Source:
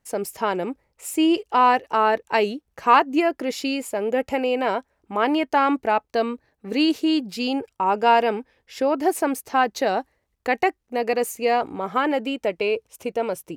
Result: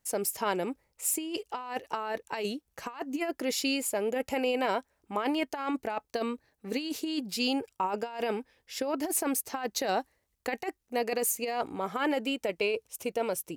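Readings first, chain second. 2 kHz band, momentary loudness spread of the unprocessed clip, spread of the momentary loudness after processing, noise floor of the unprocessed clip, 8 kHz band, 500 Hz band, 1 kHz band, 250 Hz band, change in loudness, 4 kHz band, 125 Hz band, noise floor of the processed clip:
-9.5 dB, 10 LU, 8 LU, -74 dBFS, +3.5 dB, -9.0 dB, -13.5 dB, -9.5 dB, -9.5 dB, -5.5 dB, no reading, -78 dBFS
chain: treble shelf 4.2 kHz +11 dB; compressor with a negative ratio -21 dBFS, ratio -0.5; trim -8 dB

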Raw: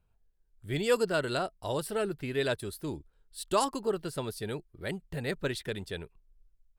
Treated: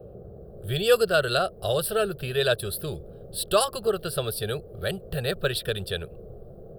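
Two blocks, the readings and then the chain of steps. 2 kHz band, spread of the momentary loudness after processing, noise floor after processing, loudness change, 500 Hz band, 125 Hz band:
+7.0 dB, 19 LU, -45 dBFS, +6.5 dB, +7.0 dB, +6.5 dB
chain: treble shelf 6 kHz +9 dB; level rider gain up to 5.5 dB; band noise 50–480 Hz -46 dBFS; in parallel at -2 dB: compression, threshold -34 dBFS, peak gain reduction 17.5 dB; on the sum: static phaser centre 1.4 kHz, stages 8; trim +1.5 dB

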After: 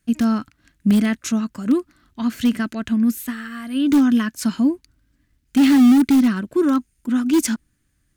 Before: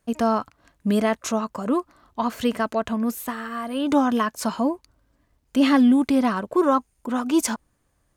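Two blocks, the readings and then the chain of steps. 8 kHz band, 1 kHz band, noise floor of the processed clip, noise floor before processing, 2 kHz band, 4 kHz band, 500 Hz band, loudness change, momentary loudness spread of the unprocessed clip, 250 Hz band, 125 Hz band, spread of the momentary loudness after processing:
+2.5 dB, -7.0 dB, -68 dBFS, -69 dBFS, +1.5 dB, +2.0 dB, -4.0 dB, +4.0 dB, 12 LU, +5.5 dB, no reading, 13 LU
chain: high-order bell 700 Hz -14 dB; in parallel at -11 dB: integer overflow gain 15.5 dB; on the sum: dynamic bell 250 Hz, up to +5 dB, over -30 dBFS, Q 0.78

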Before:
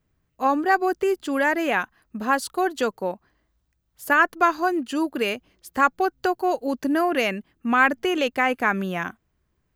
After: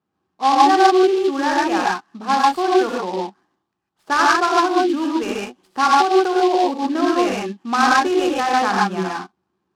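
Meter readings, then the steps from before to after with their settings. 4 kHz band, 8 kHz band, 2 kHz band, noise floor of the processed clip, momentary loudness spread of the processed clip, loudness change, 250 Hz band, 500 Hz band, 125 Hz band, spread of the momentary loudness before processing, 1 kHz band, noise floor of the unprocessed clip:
+8.0 dB, +8.0 dB, +0.5 dB, -76 dBFS, 12 LU, +5.5 dB, +5.5 dB, +6.0 dB, no reading, 12 LU, +7.5 dB, -73 dBFS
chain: cabinet simulation 190–4400 Hz, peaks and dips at 190 Hz +6 dB, 350 Hz +7 dB, 570 Hz -4 dB, 820 Hz +10 dB, 1.2 kHz +7 dB, 2.1 kHz -7 dB; gated-style reverb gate 170 ms rising, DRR -3 dB; delay time shaken by noise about 3.2 kHz, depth 0.032 ms; trim -4.5 dB

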